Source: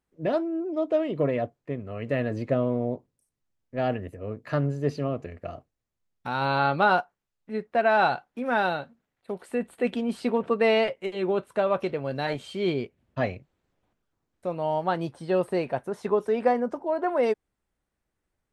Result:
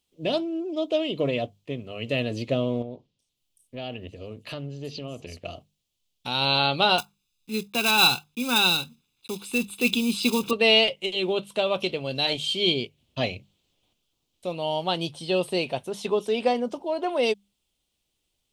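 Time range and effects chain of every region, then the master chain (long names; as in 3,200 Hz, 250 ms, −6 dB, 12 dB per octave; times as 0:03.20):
0:02.82–0:05.45: downward compressor 2.5 to 1, threshold −34 dBFS + multiband delay without the direct sound lows, highs 380 ms, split 5,800 Hz
0:06.98–0:10.53: one scale factor per block 5 bits + comb filter 0.8 ms, depth 84%
whole clip: high shelf with overshoot 2,300 Hz +10.5 dB, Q 3; mains-hum notches 50/100/150/200 Hz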